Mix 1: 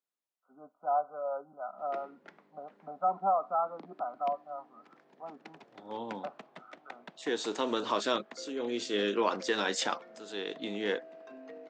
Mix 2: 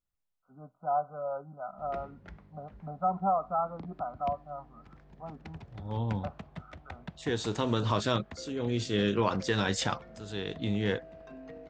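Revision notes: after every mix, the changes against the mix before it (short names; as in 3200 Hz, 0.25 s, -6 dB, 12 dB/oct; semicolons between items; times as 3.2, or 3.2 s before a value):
master: remove HPF 270 Hz 24 dB/oct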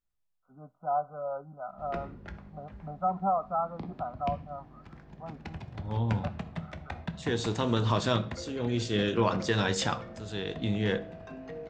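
background +4.0 dB; reverb: on, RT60 0.60 s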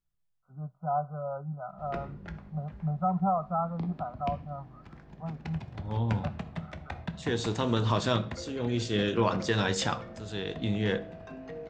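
first voice: add resonant low shelf 200 Hz +7.5 dB, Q 3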